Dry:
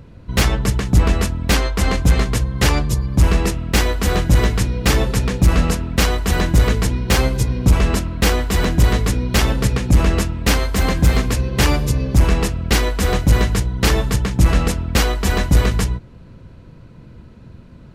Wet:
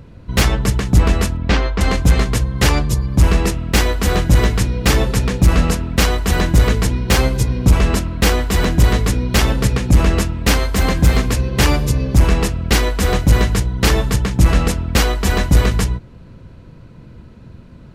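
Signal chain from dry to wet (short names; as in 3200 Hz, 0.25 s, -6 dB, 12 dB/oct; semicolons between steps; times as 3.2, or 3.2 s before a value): 1.37–1.81 air absorption 150 m; gain +1.5 dB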